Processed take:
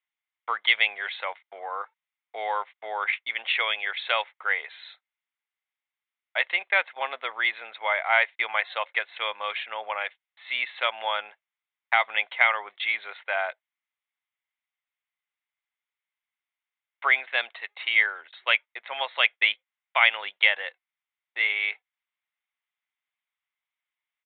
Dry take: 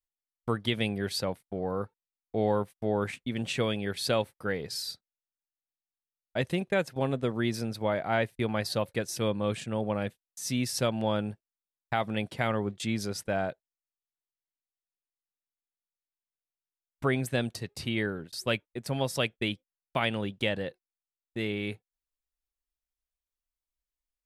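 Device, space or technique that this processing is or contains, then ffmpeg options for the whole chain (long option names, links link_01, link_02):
musical greeting card: -af "aresample=8000,aresample=44100,highpass=frequency=820:width=0.5412,highpass=frequency=820:width=1.3066,equalizer=frequency=2100:width_type=o:width=0.23:gain=10.5,volume=8.5dB"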